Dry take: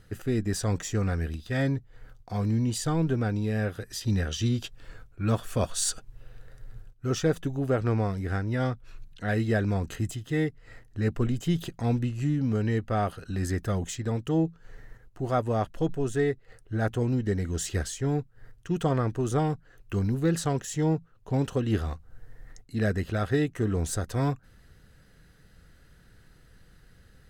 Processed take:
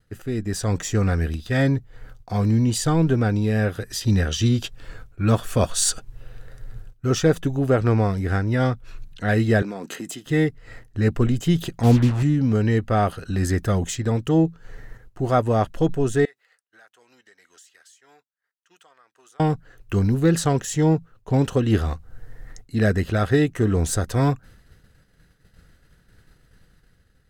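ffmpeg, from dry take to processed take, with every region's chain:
-filter_complex "[0:a]asettb=1/sr,asplit=3[a][b][c];[a]atrim=end=9.624[d];[b]atrim=start=9.62:end=10.26,asetpts=PTS-STARTPTS,afade=t=in:d=0.004:c=qsin,afade=t=out:st=0.636:d=0.004:c=qsin,highpass=f=210:w=0.5412,highpass=f=210:w=1.3066,acompressor=threshold=-34dB:ratio=6:attack=3.2:release=140:knee=1:detection=peak[e];[c]atrim=start=10.256[f];[d][e]acrossfade=d=0.004:c1=hsin:c2=qsin[g];[g][f]acrossfade=d=0.004:c1=qsin:c2=hsin,asettb=1/sr,asplit=3[h][i][j];[h]atrim=end=11.834[k];[i]atrim=start=11.83:end=12.23,asetpts=PTS-STARTPTS,afade=t=in:d=0.004:c=qsin,afade=t=out:st=0.396:d=0.004:c=qsin,tiltshelf=f=1.3k:g=4.5,bandreject=f=50:t=h:w=6,bandreject=f=100:t=h:w=6,bandreject=f=150:t=h:w=6,bandreject=f=200:t=h:w=6,acrusher=bits=5:mix=0:aa=0.5[l];[j]atrim=start=12.226[m];[k][l]acrossfade=d=0.004:c1=hsin:c2=qsin[n];[n][m]acrossfade=d=0.004:c1=qsin:c2=hsin,asettb=1/sr,asplit=3[o][p][q];[o]atrim=end=16.254[r];[p]atrim=start=16.25:end=19.4,asetpts=PTS-STARTPTS,afade=t=in:d=0.004:c=qsin,afade=t=out:st=3.146:d=0.004:c=qsin,highpass=1.2k,acompressor=threshold=-50dB:ratio=16:attack=3.2:release=140:knee=1:detection=peak[s];[q]atrim=start=19.396[t];[r][s]acrossfade=d=0.004:c1=hsin:c2=qsin[u];[u][t]acrossfade=d=0.004:c1=qsin:c2=hsin,agate=range=-33dB:threshold=-48dB:ratio=3:detection=peak,dynaudnorm=f=150:g=9:m=7dB"

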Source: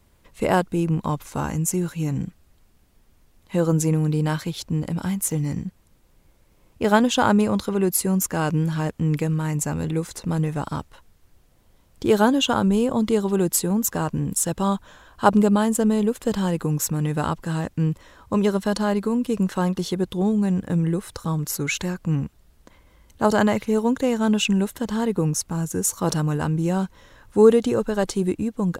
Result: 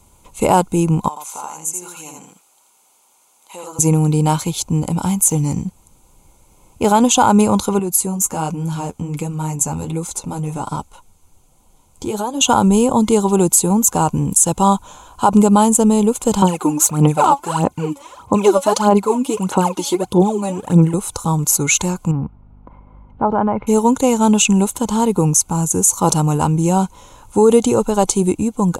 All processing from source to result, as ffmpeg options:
-filter_complex "[0:a]asettb=1/sr,asplit=3[a][b][c];[a]atrim=end=1.084[d];[b]atrim=start=1.08:end=3.79,asetpts=PTS-STARTPTS,afade=t=in:d=0.004:c=qsin,afade=t=out:st=2.706:d=0.004:c=qsin,highpass=650,acompressor=threshold=-46dB:ratio=2:attack=3.2:release=140:knee=1:detection=peak,aecho=1:1:83:0.668,atrim=end_sample=119511[e];[c]atrim=start=3.786[f];[d][e]acrossfade=d=0.004:c1=hsin:c2=qsin[g];[g][f]acrossfade=d=0.004:c1=qsin:c2=hsin,asettb=1/sr,asplit=3[h][i][j];[h]atrim=end=7.794[k];[i]atrim=start=7.79:end=12.41,asetpts=PTS-STARTPTS,afade=t=in:d=0.004:c=qsin,afade=t=out:st=4.616:d=0.004:c=qsin,acompressor=threshold=-22dB:ratio=4:attack=3.2:release=140:knee=1:detection=peak,flanger=delay=3.4:depth=9.3:regen=-26:speed=1.3:shape=triangular[l];[j]atrim=start=12.406[m];[k][l]acrossfade=d=0.004:c1=hsin:c2=qsin[n];[n][m]acrossfade=d=0.004:c1=qsin:c2=hsin,asettb=1/sr,asplit=3[o][p][q];[o]atrim=end=16.424[r];[p]atrim=start=16.42:end=20.94,asetpts=PTS-STARTPTS,afade=t=in:d=0.004:c=qsin,afade=t=out:st=4.516:d=0.004:c=qsin,highpass=93,bass=f=250:g=-8,treble=f=4k:g=-6,aphaser=in_gain=1:out_gain=1:delay=3.6:decay=0.77:speed=1.6:type=sinusoidal[s];[q]atrim=start=20.936[t];[r][s]acrossfade=d=0.004:c1=hsin:c2=qsin[u];[u][t]acrossfade=d=0.004:c1=qsin:c2=hsin,asettb=1/sr,asplit=3[v][w][x];[v]atrim=end=22.114[y];[w]atrim=start=22.11:end=23.67,asetpts=PTS-STARTPTS,afade=t=in:d=0.004:c=qsin,afade=t=out:st=1.556:d=0.004:c=qsin,lowpass=f=1.8k:w=0.5412,lowpass=f=1.8k:w=1.3066,acompressor=threshold=-24dB:ratio=2:attack=3.2:release=140:knee=1:detection=peak,aeval=exprs='val(0)+0.00316*(sin(2*PI*50*n/s)+sin(2*PI*2*50*n/s)/2+sin(2*PI*3*50*n/s)/3+sin(2*PI*4*50*n/s)/4+sin(2*PI*5*50*n/s)/5)':c=same[z];[x]atrim=start=23.666[aa];[y][z]acrossfade=d=0.004:c1=hsin:c2=qsin[ab];[ab][aa]acrossfade=d=0.004:c1=qsin:c2=hsin,superequalizer=9b=2.24:11b=0.251:15b=3.16:16b=2.82,alimiter=level_in=7.5dB:limit=-1dB:release=50:level=0:latency=1,volume=-1dB"

